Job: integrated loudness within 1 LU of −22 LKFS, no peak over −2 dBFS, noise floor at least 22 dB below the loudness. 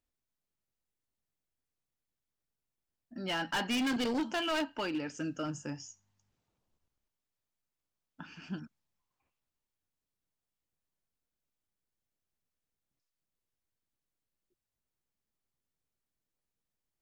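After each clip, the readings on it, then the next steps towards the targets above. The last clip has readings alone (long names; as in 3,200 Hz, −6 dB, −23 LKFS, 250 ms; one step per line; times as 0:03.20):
share of clipped samples 1.3%; peaks flattened at −29.0 dBFS; integrated loudness −35.0 LKFS; sample peak −29.0 dBFS; target loudness −22.0 LKFS
→ clipped peaks rebuilt −29 dBFS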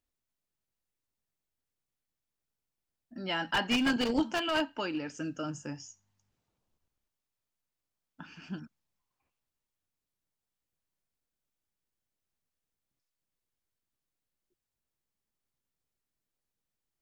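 share of clipped samples 0.0%; integrated loudness −31.5 LKFS; sample peak −20.0 dBFS; target loudness −22.0 LKFS
→ level +9.5 dB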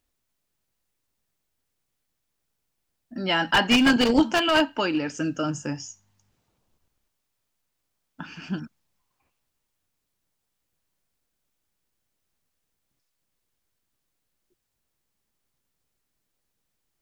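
integrated loudness −22.5 LKFS; sample peak −10.5 dBFS; background noise floor −79 dBFS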